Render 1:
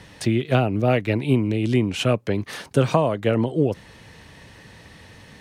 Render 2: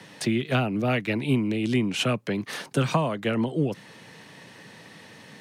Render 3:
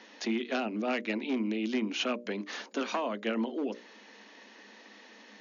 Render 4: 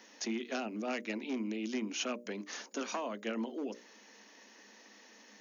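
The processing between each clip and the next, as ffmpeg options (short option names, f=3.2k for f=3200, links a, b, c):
-filter_complex "[0:a]highpass=f=140:w=0.5412,highpass=f=140:w=1.3066,acrossover=split=270|890[a][b][c];[b]acompressor=threshold=-31dB:ratio=6[d];[a][d][c]amix=inputs=3:normalize=0"
-af "volume=17.5dB,asoftclip=hard,volume=-17.5dB,afftfilt=real='re*between(b*sr/4096,200,6900)':imag='im*between(b*sr/4096,200,6900)':win_size=4096:overlap=0.75,bandreject=f=60:t=h:w=6,bandreject=f=120:t=h:w=6,bandreject=f=180:t=h:w=6,bandreject=f=240:t=h:w=6,bandreject=f=300:t=h:w=6,bandreject=f=360:t=h:w=6,bandreject=f=420:t=h:w=6,bandreject=f=480:t=h:w=6,bandreject=f=540:t=h:w=6,bandreject=f=600:t=h:w=6,volume=-5dB"
-af "aexciter=amount=3.2:drive=6.6:freq=5.4k,volume=-5.5dB"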